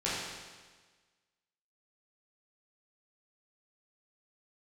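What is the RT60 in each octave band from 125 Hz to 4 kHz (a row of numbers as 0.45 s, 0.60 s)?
1.4 s, 1.4 s, 1.4 s, 1.4 s, 1.4 s, 1.4 s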